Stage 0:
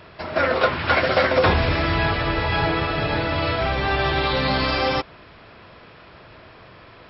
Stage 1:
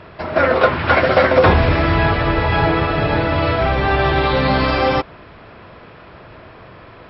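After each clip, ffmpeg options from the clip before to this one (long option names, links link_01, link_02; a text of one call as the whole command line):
ffmpeg -i in.wav -af "lowpass=frequency=1900:poles=1,volume=6.5dB" out.wav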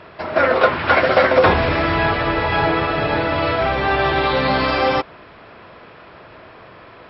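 ffmpeg -i in.wav -af "lowshelf=frequency=180:gain=-9.5" out.wav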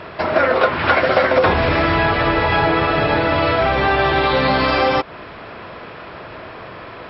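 ffmpeg -i in.wav -af "acompressor=threshold=-23dB:ratio=2.5,volume=7.5dB" out.wav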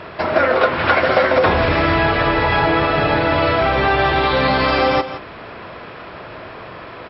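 ffmpeg -i in.wav -af "aecho=1:1:167:0.251" out.wav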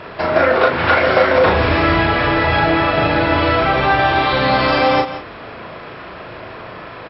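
ffmpeg -i in.wav -filter_complex "[0:a]asplit=2[link_01][link_02];[link_02]adelay=37,volume=-4dB[link_03];[link_01][link_03]amix=inputs=2:normalize=0" out.wav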